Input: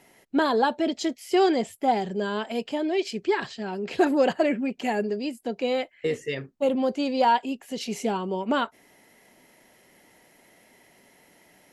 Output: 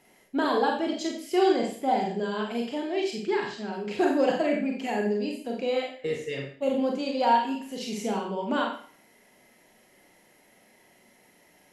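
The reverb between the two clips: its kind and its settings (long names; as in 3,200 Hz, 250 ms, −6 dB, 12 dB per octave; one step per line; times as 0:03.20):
four-comb reverb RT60 0.47 s, combs from 30 ms, DRR 0 dB
level −5 dB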